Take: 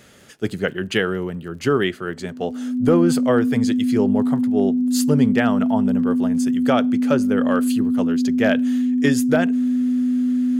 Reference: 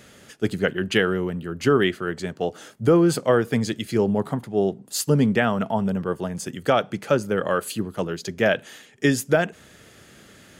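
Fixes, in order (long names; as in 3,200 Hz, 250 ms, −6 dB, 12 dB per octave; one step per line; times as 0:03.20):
clipped peaks rebuilt −7 dBFS
click removal
notch filter 250 Hz, Q 30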